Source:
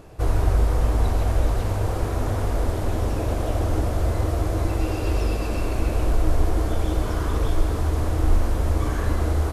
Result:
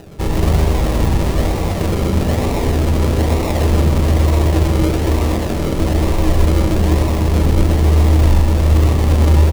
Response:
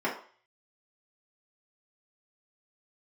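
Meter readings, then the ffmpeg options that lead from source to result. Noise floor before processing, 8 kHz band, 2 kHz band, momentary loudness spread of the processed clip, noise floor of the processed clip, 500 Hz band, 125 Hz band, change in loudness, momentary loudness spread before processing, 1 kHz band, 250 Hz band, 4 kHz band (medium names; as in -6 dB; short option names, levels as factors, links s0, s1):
-26 dBFS, +9.0 dB, +8.0 dB, 5 LU, -19 dBFS, +8.5 dB, +10.0 dB, +9.0 dB, 3 LU, +7.0 dB, +11.5 dB, +11.0 dB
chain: -filter_complex "[0:a]acrusher=samples=39:mix=1:aa=0.000001:lfo=1:lforange=23.4:lforate=1.1,equalizer=f=1500:t=o:w=0.21:g=-7,aecho=1:1:128:0.473,asplit=2[s0][s1];[1:a]atrim=start_sample=2205,asetrate=22491,aresample=44100,lowshelf=f=210:g=11[s2];[s1][s2]afir=irnorm=-1:irlink=0,volume=0.0841[s3];[s0][s3]amix=inputs=2:normalize=0,volume=1.78"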